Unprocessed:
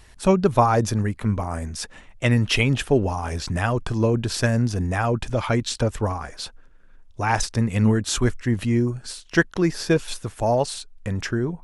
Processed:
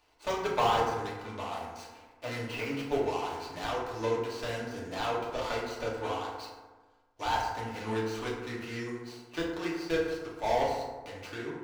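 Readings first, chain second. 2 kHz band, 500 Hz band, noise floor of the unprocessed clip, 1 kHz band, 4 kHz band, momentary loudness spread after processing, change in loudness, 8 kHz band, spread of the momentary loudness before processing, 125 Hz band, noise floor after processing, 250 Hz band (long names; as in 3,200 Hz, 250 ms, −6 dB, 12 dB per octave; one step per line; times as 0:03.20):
−10.0 dB, −8.0 dB, −48 dBFS, −5.5 dB, −9.5 dB, 12 LU, −10.5 dB, −16.5 dB, 11 LU, −20.5 dB, −61 dBFS, −14.5 dB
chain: running median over 25 samples
first-order pre-emphasis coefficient 0.9
de-essing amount 80%
three-way crossover with the lows and the highs turned down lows −17 dB, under 370 Hz, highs −18 dB, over 5,500 Hz
in parallel at −4 dB: comparator with hysteresis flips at −33.5 dBFS
on the sum: feedback delay network reverb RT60 1.3 s, low-frequency decay 1.1×, high-frequency decay 0.4×, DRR −5.5 dB
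level +6 dB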